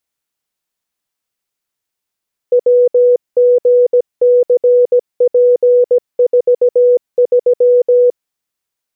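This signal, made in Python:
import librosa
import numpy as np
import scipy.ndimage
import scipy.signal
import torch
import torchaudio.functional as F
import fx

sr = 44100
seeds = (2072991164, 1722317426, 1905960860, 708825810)

y = fx.morse(sr, text='WGCP43', wpm=17, hz=491.0, level_db=-5.5)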